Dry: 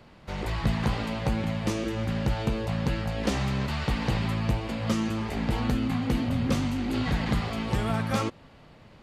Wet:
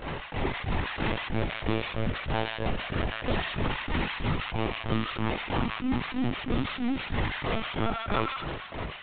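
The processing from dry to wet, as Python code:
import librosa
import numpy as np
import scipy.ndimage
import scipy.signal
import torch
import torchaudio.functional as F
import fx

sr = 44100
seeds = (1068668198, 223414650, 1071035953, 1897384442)

y = fx.low_shelf(x, sr, hz=150.0, db=-4.5)
y = fx.granulator(y, sr, seeds[0], grain_ms=218.0, per_s=3.1, spray_ms=25.0, spread_st=0)
y = fx.echo_wet_highpass(y, sr, ms=83, feedback_pct=37, hz=1400.0, wet_db=-13.5)
y = fx.lpc_vocoder(y, sr, seeds[1], excitation='pitch_kept', order=16)
y = fx.env_flatten(y, sr, amount_pct=70)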